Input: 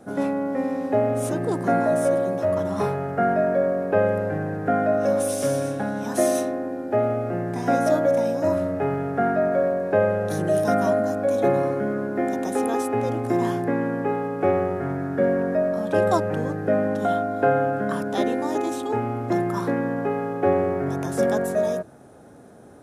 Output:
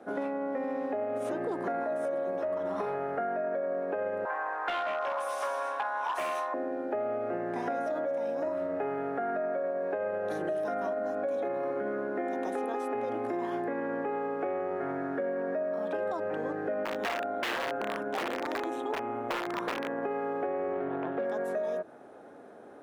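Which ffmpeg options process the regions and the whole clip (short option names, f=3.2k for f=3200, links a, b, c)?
-filter_complex "[0:a]asettb=1/sr,asplit=3[a][b][c];[a]atrim=end=4.254[d];[b]atrim=start=4.25:end=6.54,asetpts=PTS-STARTPTS,afade=t=in:d=0.004:c=qsin,afade=t=out:st=2.286:d=0.004:c=qsin,highpass=f=1k:t=q:w=7.1,aeval=exprs='0.106*(abs(mod(val(0)/0.106+3,4)-2)-1)':c=same[e];[c]atrim=start=6.536[f];[d][e]acrossfade=d=0.004:c1=hsin:c2=qsin[g];[g][f]acrossfade=d=0.004:c1=qsin:c2=hsin,asettb=1/sr,asplit=3[h][i][j];[h]atrim=end=16.854[k];[i]atrim=start=16.85:end=20.03,asetpts=PTS-STARTPTS,afade=t=in:d=0.004:c=qsin,afade=t=out:st=3.176:d=0.004:c=qsin,equalizer=f=4.7k:t=o:w=0.29:g=-11.5,aeval=exprs='(mod(6.68*val(0)+1,2)-1)/6.68':c=same,tremolo=f=120:d=0.462[l];[j]atrim=start=20.026[m];[k][l]acrossfade=d=0.004:c1=hsin:c2=qsin[n];[n][m]acrossfade=d=0.004:c1=qsin:c2=hsin,asettb=1/sr,asplit=3[o][p][q];[o]atrim=end=20.734[r];[p]atrim=start=20.73:end=21.25,asetpts=PTS-STARTPTS,afade=t=in:d=0.004:c=qsin,afade=t=out:st=0.516:d=0.004:c=qsin,highshelf=f=3.9k:t=q:w=3:g=-8,adynamicsmooth=sensitivity=1:basefreq=1.4k[s];[q]atrim=start=21.246[t];[r][s]acrossfade=d=0.004:c1=hsin:c2=qsin[u];[u][t]acrossfade=d=0.004:c1=qsin:c2=hsin,alimiter=limit=-17.5dB:level=0:latency=1:release=47,acrossover=split=270 3500:gain=0.1 1 0.178[v][w][x];[v][w][x]amix=inputs=3:normalize=0,acompressor=threshold=-29dB:ratio=6"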